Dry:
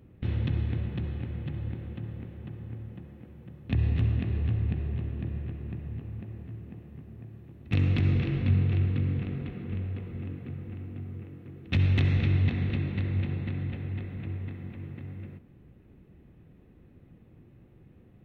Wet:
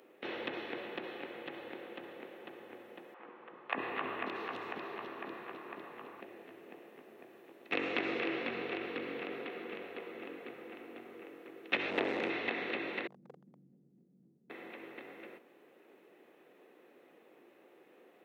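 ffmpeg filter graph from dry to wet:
-filter_complex "[0:a]asettb=1/sr,asplit=3[a][b][c];[a]atrim=end=3.144[d];[b]atrim=start=3.14:end=6.21,asetpts=PTS-STARTPTS,afade=t=in:d=0.004:c=qsin,afade=t=out:st=3.066:d=0.004:c=qsin,equalizer=f=1.1k:w=1.7:g=11.5,acrossover=split=520|3700[e][f][g];[e]adelay=50[h];[g]adelay=570[i];[h][f][i]amix=inputs=3:normalize=0,atrim=end_sample=135387[j];[c]atrim=start=6.206[k];[d][j]acrossfade=d=0.004:c1=hsin:c2=qsin[l];[l][k]acrossfade=d=0.004:c1=qsin:c2=hsin,asettb=1/sr,asplit=3[m][n][o];[m]atrim=end=11.904[p];[n]atrim=start=11.9:end=12.3,asetpts=PTS-STARTPTS,afade=t=in:d=0.004:c=qsin,afade=t=out:st=0.396:d=0.004:c=qsin,tiltshelf=f=780:g=4.5,aeval=exprs='clip(val(0),-1,0.0422)':c=same[q];[o]atrim=start=12.296[r];[p][q]acrossfade=d=0.004:c1=hsin:c2=qsin[s];[s][r]acrossfade=d=0.004:c1=qsin:c2=hsin,asettb=1/sr,asplit=3[t][u][v];[t]atrim=end=13.074[w];[u]atrim=start=13.07:end=14.5,asetpts=PTS-STARTPTS,afade=t=in:d=0.004:c=qsin,afade=t=out:st=1.426:d=0.004:c=qsin,asuperpass=centerf=160:order=4:qfactor=2.5,asoftclip=type=hard:threshold=-31dB[x];[v]atrim=start=14.496[y];[w][x]acrossfade=d=0.004:c1=hsin:c2=qsin[z];[z][y]acrossfade=d=0.004:c1=qsin:c2=hsin,acrossover=split=3000[aa][ab];[ab]acompressor=threshold=-58dB:ratio=4:attack=1:release=60[ac];[aa][ac]amix=inputs=2:normalize=0,highpass=f=410:w=0.5412,highpass=f=410:w=1.3066,volume=6.5dB"

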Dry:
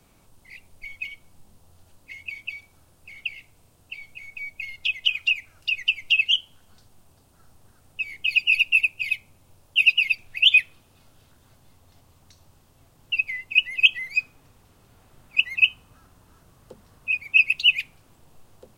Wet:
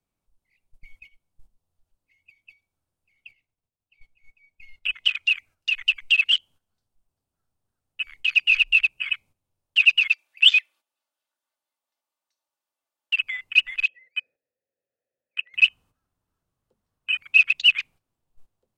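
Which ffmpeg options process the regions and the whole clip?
-filter_complex "[0:a]asettb=1/sr,asplit=3[a][b][c];[a]atrim=end=3.314[d];[b]atrim=start=3.31:end=5.32,asetpts=PTS-STARTPTS,afade=t=in:d=0.004:c=qsin,afade=t=out:st=2.006:d=0.004:c=qsin,highshelf=f=9.1k:g=-8,agate=range=-33dB:threshold=-52dB:ratio=3:release=100:detection=peak[e];[c]atrim=start=5.316[f];[d][e]acrossfade=d=0.004:c1=hsin:c2=qsin[g];[g][f]acrossfade=d=0.004:c1=qsin:c2=hsin,asettb=1/sr,asplit=3[h][i][j];[h]atrim=end=8.584[k];[i]atrim=start=8.58:end=9.14,asetpts=PTS-STARTPTS,afade=t=in:d=0.004:c=qsin,afade=t=out:st=0.556:d=0.004:c=qsin,afreqshift=26,acrossover=split=6200[l][m];[m]acompressor=threshold=-56dB:ratio=4:attack=1:release=60[n];[l][n]amix=inputs=2:normalize=0[o];[j]atrim=start=9.136[p];[k][o]acrossfade=d=0.004:c1=hsin:c2=qsin[q];[q][p]acrossfade=d=0.004:c1=qsin:c2=hsin,asettb=1/sr,asplit=3[r][s][t];[r]atrim=end=10.084[u];[s]atrim=start=10.08:end=13.22,asetpts=PTS-STARTPTS,afade=t=in:d=0.004:c=qsin,afade=t=out:st=3.136:d=0.004:c=qsin,highpass=700,aecho=1:1:3.4:0.48,atrim=end_sample=138474[v];[t]atrim=start=13.216[w];[u][v]acrossfade=d=0.004:c1=hsin:c2=qsin[x];[x][w]acrossfade=d=0.004:c1=qsin:c2=hsin,asettb=1/sr,asplit=3[y][z][aa];[y]atrim=end=13.834[ab];[z]atrim=start=13.83:end=15.54,asetpts=PTS-STARTPTS,afade=t=in:d=0.004:c=qsin,afade=t=out:st=1.706:d=0.004:c=qsin,equalizer=f=3.1k:w=2.7:g=-11,acontrast=88,asplit=3[ac][ad][ae];[ac]bandpass=f=530:t=q:w=8,volume=0dB[af];[ad]bandpass=f=1.84k:t=q:w=8,volume=-6dB[ag];[ae]bandpass=f=2.48k:t=q:w=8,volume=-9dB[ah];[af][ag][ah]amix=inputs=3:normalize=0[ai];[aa]atrim=start=15.536[aj];[ab][ai]acrossfade=d=0.004:c1=hsin:c2=qsin[ak];[ak][aj]acrossfade=d=0.004:c1=qsin:c2=hsin,acrossover=split=5400[al][am];[am]acompressor=threshold=-52dB:ratio=4:attack=1:release=60[an];[al][an]amix=inputs=2:normalize=0,afwtdn=0.0398,agate=range=-11dB:threshold=-48dB:ratio=16:detection=peak,volume=1.5dB"

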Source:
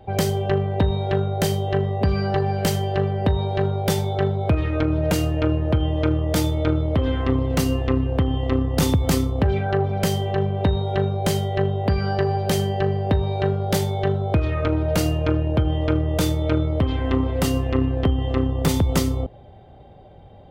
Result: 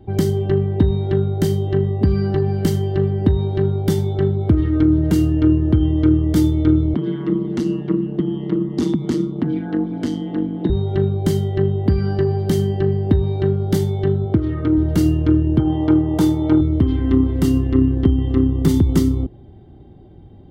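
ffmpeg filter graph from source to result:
-filter_complex "[0:a]asettb=1/sr,asplit=3[a][b][c];[a]atrim=end=6.944[d];[b]atrim=start=6.94:end=10.7,asetpts=PTS-STARTPTS,afade=t=in:d=0.004:c=qsin,afade=t=out:st=3.756:d=0.004:c=qsin,aeval=exprs='val(0)*sin(2*PI*77*n/s)':c=same,highpass=170,lowpass=6.2k[e];[c]atrim=start=10.696[f];[d][e]acrossfade=d=0.004:c1=hsin:c2=qsin[g];[g][f]acrossfade=d=0.004:c1=qsin:c2=hsin,asettb=1/sr,asplit=3[h][i][j];[h]atrim=end=14.254[k];[i]atrim=start=14.25:end=14.78,asetpts=PTS-STARTPTS,afade=t=in:d=0.004:c=qsin,afade=t=out:st=0.526:d=0.004:c=qsin,highpass=98,highshelf=f=6.7k:g=-12[l];[j]atrim=start=14.776[m];[k][l]acrossfade=d=0.004:c1=hsin:c2=qsin[n];[n][m]acrossfade=d=0.004:c1=qsin:c2=hsin,asettb=1/sr,asplit=3[o][p][q];[o]atrim=end=15.594[r];[p]atrim=start=15.59:end=16.61,asetpts=PTS-STARTPTS,afade=t=in:d=0.004:c=qsin,afade=t=out:st=1.016:d=0.004:c=qsin,highpass=110,equalizer=f=830:t=o:w=0.81:g=12.5[s];[q]atrim=start=16.606[t];[r][s]acrossfade=d=0.004:c1=hsin:c2=qsin[u];[u][t]acrossfade=d=0.004:c1=qsin:c2=hsin,lowshelf=f=430:t=q:w=3:g=8,bandreject=f=2.5k:w=7.1,volume=-4.5dB"

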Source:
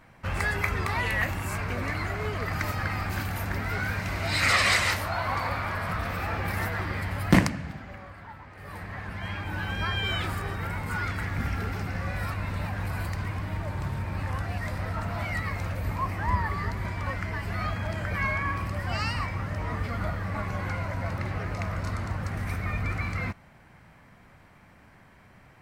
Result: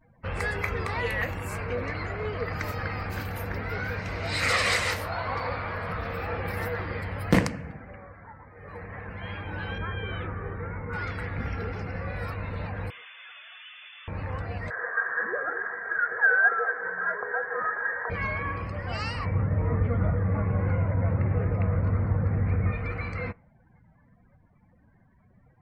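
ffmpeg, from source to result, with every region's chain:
-filter_complex "[0:a]asettb=1/sr,asplit=3[a][b][c];[a]atrim=end=9.784[d];[b]atrim=start=9.78:end=10.93,asetpts=PTS-STARTPTS,afade=t=in:d=0.004:c=qsin,afade=t=out:st=1.146:d=0.004:c=qsin,lowpass=1.8k,equalizer=f=720:t=o:w=0.75:g=-5[e];[c]atrim=start=10.926[f];[d][e]acrossfade=d=0.004:c1=hsin:c2=qsin[g];[g][f]acrossfade=d=0.004:c1=qsin:c2=hsin,asettb=1/sr,asplit=3[h][i][j];[h]atrim=end=12.904[k];[i]atrim=start=12.9:end=14.08,asetpts=PTS-STARTPTS,afade=t=in:d=0.004:c=qsin,afade=t=out:st=1.176:d=0.004:c=qsin,highpass=f=1k:p=1,aeval=exprs='0.0133*(abs(mod(val(0)/0.0133+3,4)-2)-1)':c=same,lowpass=f=3.1k:t=q:w=0.5098,lowpass=f=3.1k:t=q:w=0.6013,lowpass=f=3.1k:t=q:w=0.9,lowpass=f=3.1k:t=q:w=2.563,afreqshift=-3600[l];[j]atrim=start=14.076[m];[k][l]acrossfade=d=0.004:c1=hsin:c2=qsin[n];[n][m]acrossfade=d=0.004:c1=qsin:c2=hsin,asettb=1/sr,asplit=3[o][p][q];[o]atrim=end=14.704[r];[p]atrim=start=14.7:end=18.1,asetpts=PTS-STARTPTS,afade=t=in:d=0.004:c=qsin,afade=t=out:st=3.396:d=0.004:c=qsin,highpass=f=840:t=q:w=7.3,aecho=1:1:3.4:0.44,atrim=end_sample=149940,lowpass=f=2.1k:t=q:w=0.5098,lowpass=f=2.1k:t=q:w=0.6013,lowpass=f=2.1k:t=q:w=0.9,lowpass=f=2.1k:t=q:w=2.563,afreqshift=-2500[s];[q]atrim=start=18.096[t];[r][s]acrossfade=d=0.004:c1=hsin:c2=qsin[u];[u][t]acrossfade=d=0.004:c1=qsin:c2=hsin,asettb=1/sr,asplit=3[v][w][x];[v]atrim=end=19.254[y];[w]atrim=start=19.25:end=22.72,asetpts=PTS-STARTPTS,afade=t=in:d=0.004:c=qsin,afade=t=out:st=3.466:d=0.004:c=qsin,highpass=100,lowpass=6.5k,aemphasis=mode=reproduction:type=riaa[z];[x]atrim=start=22.716[aa];[y][z]acrossfade=d=0.004:c1=hsin:c2=qsin[ab];[ab][aa]acrossfade=d=0.004:c1=qsin:c2=hsin,afftdn=nr=25:nf=-50,equalizer=f=480:w=6.7:g=14,volume=-2.5dB"

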